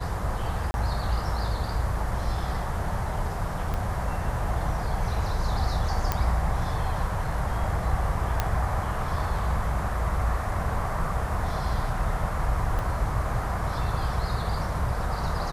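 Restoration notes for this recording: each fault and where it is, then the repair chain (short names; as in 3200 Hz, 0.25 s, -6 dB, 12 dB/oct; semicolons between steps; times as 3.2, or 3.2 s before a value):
0.71–0.74 gap 31 ms
3.74 pop -17 dBFS
6.12 pop -10 dBFS
8.4 pop -9 dBFS
12.79 pop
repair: de-click; interpolate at 0.71, 31 ms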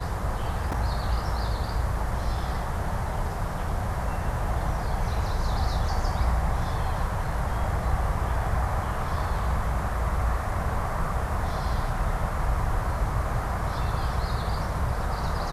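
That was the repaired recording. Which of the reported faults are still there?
3.74 pop
12.79 pop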